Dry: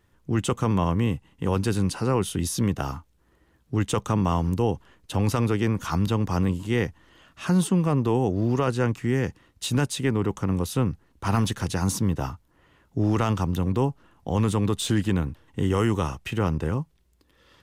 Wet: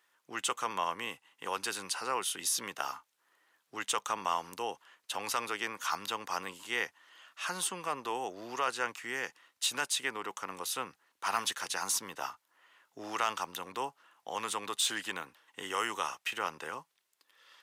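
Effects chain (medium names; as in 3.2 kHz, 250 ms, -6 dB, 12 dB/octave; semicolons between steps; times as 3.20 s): high-pass 1 kHz 12 dB/octave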